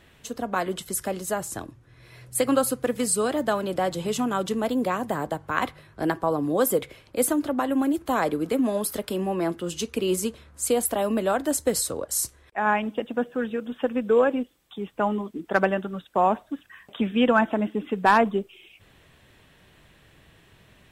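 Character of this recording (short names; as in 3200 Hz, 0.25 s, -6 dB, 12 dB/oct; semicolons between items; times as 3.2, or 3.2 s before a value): noise floor -57 dBFS; spectral tilt -4.0 dB/oct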